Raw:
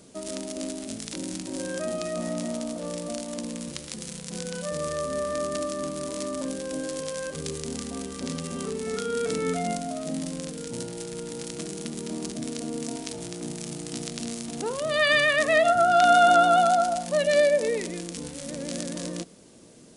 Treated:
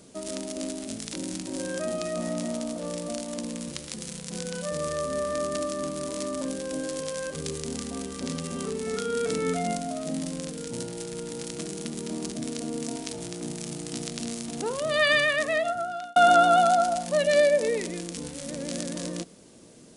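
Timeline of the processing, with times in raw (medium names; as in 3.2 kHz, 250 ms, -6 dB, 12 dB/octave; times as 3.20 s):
15.04–16.16 s: fade out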